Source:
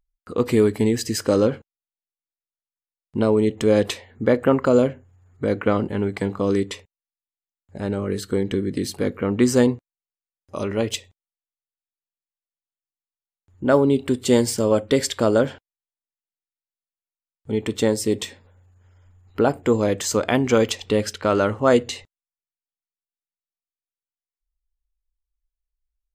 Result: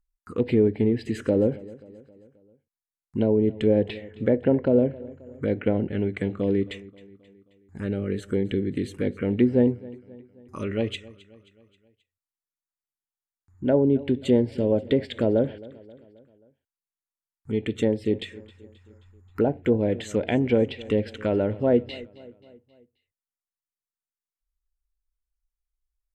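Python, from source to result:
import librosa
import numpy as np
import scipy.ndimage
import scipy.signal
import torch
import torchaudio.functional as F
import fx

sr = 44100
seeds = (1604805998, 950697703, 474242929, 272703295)

p1 = fx.env_lowpass_down(x, sr, base_hz=1200.0, full_db=-14.0)
p2 = fx.env_phaser(p1, sr, low_hz=530.0, high_hz=1200.0, full_db=-18.5)
p3 = p2 + fx.echo_feedback(p2, sr, ms=266, feedback_pct=52, wet_db=-20.5, dry=0)
y = F.gain(torch.from_numpy(p3), -1.5).numpy()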